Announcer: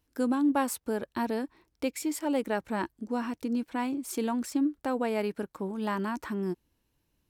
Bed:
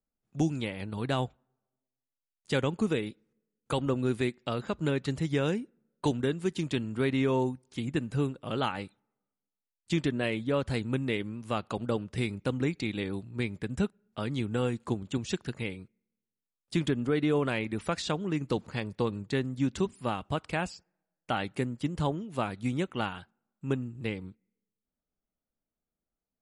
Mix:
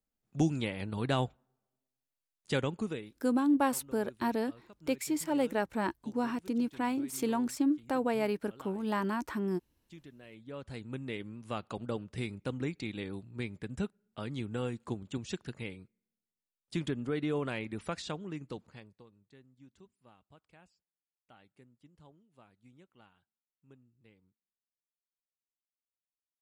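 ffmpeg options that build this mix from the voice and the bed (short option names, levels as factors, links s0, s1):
-filter_complex "[0:a]adelay=3050,volume=0.891[s0];[1:a]volume=7.08,afade=t=out:st=2.34:d=0.89:silence=0.0707946,afade=t=in:st=10.26:d=1.18:silence=0.133352,afade=t=out:st=17.89:d=1.15:silence=0.0707946[s1];[s0][s1]amix=inputs=2:normalize=0"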